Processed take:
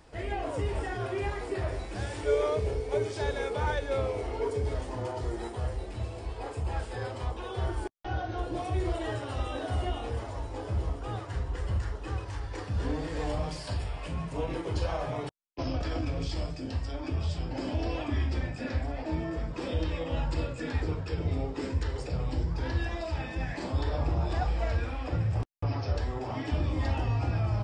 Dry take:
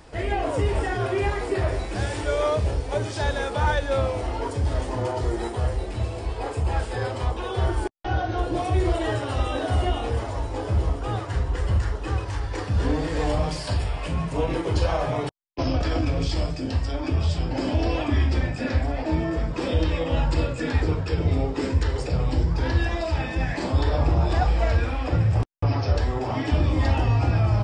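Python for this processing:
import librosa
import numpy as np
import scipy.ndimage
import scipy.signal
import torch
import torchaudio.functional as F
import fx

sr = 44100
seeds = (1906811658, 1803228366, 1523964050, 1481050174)

y = fx.small_body(x, sr, hz=(430.0, 2200.0), ring_ms=90, db=16, at=(2.23, 4.75))
y = y * librosa.db_to_amplitude(-8.0)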